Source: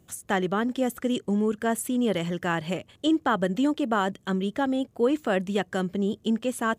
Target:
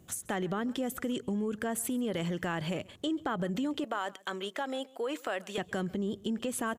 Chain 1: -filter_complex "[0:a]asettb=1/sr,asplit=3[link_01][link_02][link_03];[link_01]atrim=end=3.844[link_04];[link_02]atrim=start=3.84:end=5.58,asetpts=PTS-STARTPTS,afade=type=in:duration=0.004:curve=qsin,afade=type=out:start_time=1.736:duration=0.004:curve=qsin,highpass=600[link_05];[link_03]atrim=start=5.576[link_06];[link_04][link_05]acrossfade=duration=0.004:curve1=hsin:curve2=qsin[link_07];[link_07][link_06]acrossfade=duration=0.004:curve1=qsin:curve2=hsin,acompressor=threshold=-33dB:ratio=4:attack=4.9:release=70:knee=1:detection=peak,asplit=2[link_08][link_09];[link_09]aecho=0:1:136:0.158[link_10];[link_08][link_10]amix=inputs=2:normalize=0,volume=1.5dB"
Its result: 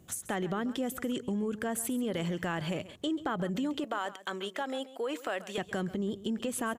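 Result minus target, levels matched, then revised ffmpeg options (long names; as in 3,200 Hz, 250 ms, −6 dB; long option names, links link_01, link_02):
echo-to-direct +7 dB
-filter_complex "[0:a]asettb=1/sr,asplit=3[link_01][link_02][link_03];[link_01]atrim=end=3.844[link_04];[link_02]atrim=start=3.84:end=5.58,asetpts=PTS-STARTPTS,afade=type=in:duration=0.004:curve=qsin,afade=type=out:start_time=1.736:duration=0.004:curve=qsin,highpass=600[link_05];[link_03]atrim=start=5.576[link_06];[link_04][link_05]acrossfade=duration=0.004:curve1=hsin:curve2=qsin[link_07];[link_07][link_06]acrossfade=duration=0.004:curve1=qsin:curve2=hsin,acompressor=threshold=-33dB:ratio=4:attack=4.9:release=70:knee=1:detection=peak,asplit=2[link_08][link_09];[link_09]aecho=0:1:136:0.0708[link_10];[link_08][link_10]amix=inputs=2:normalize=0,volume=1.5dB"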